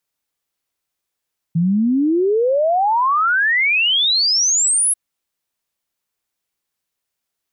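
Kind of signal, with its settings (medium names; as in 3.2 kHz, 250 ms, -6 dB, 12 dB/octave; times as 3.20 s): log sweep 160 Hz -> 11 kHz 3.39 s -13 dBFS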